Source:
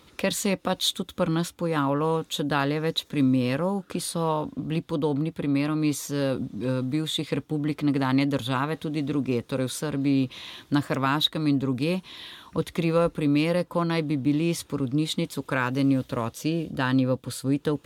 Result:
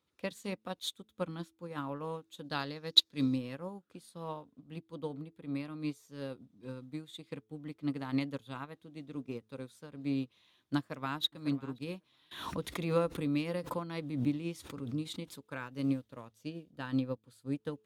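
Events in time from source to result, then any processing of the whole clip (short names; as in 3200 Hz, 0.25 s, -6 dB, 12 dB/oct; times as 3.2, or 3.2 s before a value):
2.44–3.38 bell 4600 Hz +12 dB
10.77–11.23 echo throw 0.55 s, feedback 15%, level -12 dB
12.31–15.43 backwards sustainer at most 24 dB/s
whole clip: HPF 60 Hz; de-hum 108.5 Hz, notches 4; upward expander 2.5:1, over -32 dBFS; gain -2.5 dB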